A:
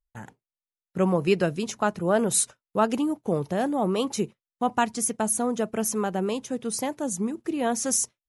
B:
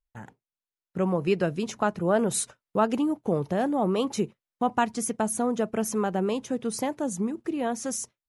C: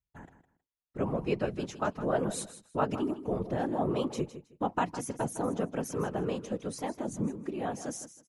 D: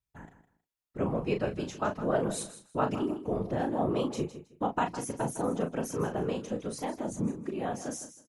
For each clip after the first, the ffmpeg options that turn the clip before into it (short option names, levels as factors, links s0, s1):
-filter_complex "[0:a]dynaudnorm=f=230:g=11:m=1.88,highshelf=f=4200:g=-7.5,asplit=2[s0][s1];[s1]acompressor=threshold=0.0398:ratio=6,volume=0.891[s2];[s0][s2]amix=inputs=2:normalize=0,volume=0.447"
-af "afftfilt=real='hypot(re,im)*cos(2*PI*random(0))':imag='hypot(re,im)*sin(2*PI*random(1))':win_size=512:overlap=0.75,highshelf=f=8300:g=-8,aecho=1:1:159|318:0.224|0.047"
-filter_complex "[0:a]asplit=2[s0][s1];[s1]adelay=36,volume=0.447[s2];[s0][s2]amix=inputs=2:normalize=0"